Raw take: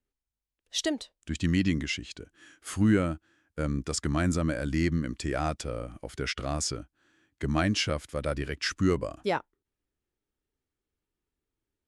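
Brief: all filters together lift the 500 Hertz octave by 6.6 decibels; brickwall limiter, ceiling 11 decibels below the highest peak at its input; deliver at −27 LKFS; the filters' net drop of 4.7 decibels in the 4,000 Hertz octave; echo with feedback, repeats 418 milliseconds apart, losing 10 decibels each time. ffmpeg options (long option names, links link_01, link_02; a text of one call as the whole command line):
ffmpeg -i in.wav -af "equalizer=frequency=500:width_type=o:gain=8.5,equalizer=frequency=4000:width_type=o:gain=-7,alimiter=limit=-20.5dB:level=0:latency=1,aecho=1:1:418|836|1254|1672:0.316|0.101|0.0324|0.0104,volume=5dB" out.wav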